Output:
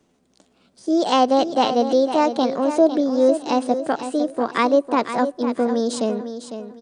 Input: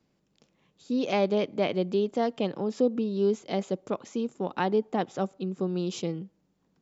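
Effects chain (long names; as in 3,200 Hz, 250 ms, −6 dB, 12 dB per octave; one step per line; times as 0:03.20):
pitch shifter +4.5 semitones
repeating echo 503 ms, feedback 26%, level −10 dB
level +8.5 dB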